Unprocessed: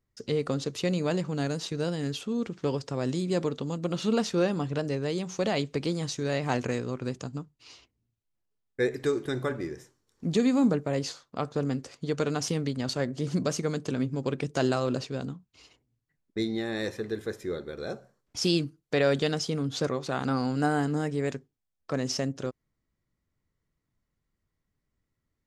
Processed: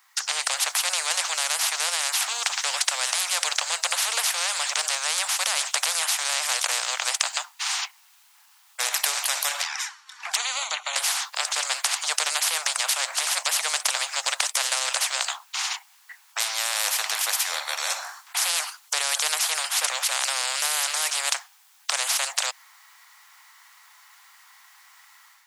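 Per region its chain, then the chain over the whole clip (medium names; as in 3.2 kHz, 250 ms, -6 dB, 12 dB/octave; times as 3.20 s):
9.62–10.96 s: band-pass filter 2 kHz, Q 0.81 + touch-sensitive flanger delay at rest 4.5 ms, full sweep at -37 dBFS
whole clip: steep high-pass 790 Hz 72 dB/octave; level rider gain up to 8 dB; spectrum-flattening compressor 10:1; trim +6 dB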